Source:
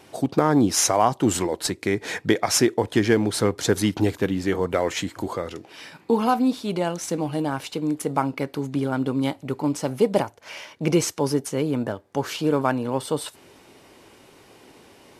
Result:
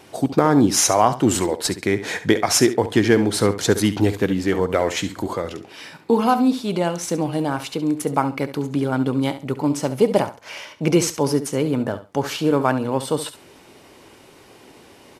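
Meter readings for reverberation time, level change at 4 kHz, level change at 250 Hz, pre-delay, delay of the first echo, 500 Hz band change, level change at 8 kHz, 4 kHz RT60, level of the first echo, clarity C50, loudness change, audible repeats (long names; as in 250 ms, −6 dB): no reverb audible, +3.0 dB, +3.5 dB, no reverb audible, 69 ms, +3.5 dB, +3.0 dB, no reverb audible, −13.0 dB, no reverb audible, +3.0 dB, 2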